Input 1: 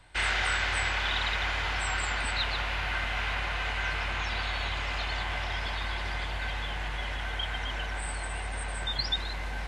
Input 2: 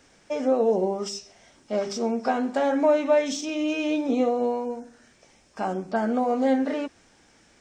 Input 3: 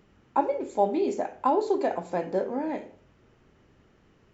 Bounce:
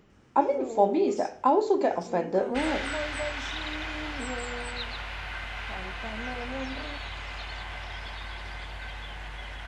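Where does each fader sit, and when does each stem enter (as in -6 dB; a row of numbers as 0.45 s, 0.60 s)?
-5.5 dB, -15.0 dB, +1.5 dB; 2.40 s, 0.10 s, 0.00 s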